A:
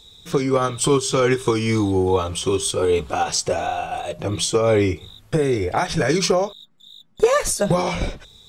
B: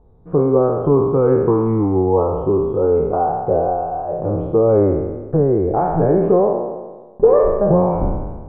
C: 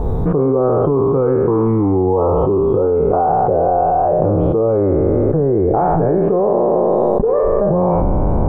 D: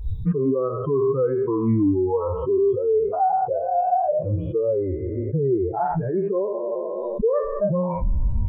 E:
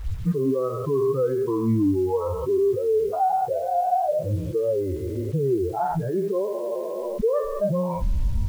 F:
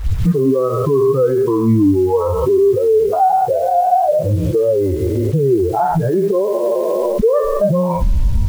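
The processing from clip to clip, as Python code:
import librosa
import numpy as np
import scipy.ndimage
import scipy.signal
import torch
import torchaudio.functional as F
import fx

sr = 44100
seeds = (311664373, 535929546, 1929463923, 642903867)

y1 = fx.spec_trails(x, sr, decay_s=1.34)
y1 = scipy.signal.sosfilt(scipy.signal.cheby2(4, 80, 5300.0, 'lowpass', fs=sr, output='sos'), y1)
y1 = y1 * librosa.db_to_amplitude(2.0)
y2 = fx.env_flatten(y1, sr, amount_pct=100)
y2 = y2 * librosa.db_to_amplitude(-7.0)
y3 = fx.bin_expand(y2, sr, power=3.0)
y4 = fx.quant_dither(y3, sr, seeds[0], bits=8, dither='none')
y4 = y4 * librosa.db_to_amplitude(-1.5)
y5 = fx.recorder_agc(y4, sr, target_db=-18.0, rise_db_per_s=53.0, max_gain_db=30)
y5 = y5 * librosa.db_to_amplitude(8.5)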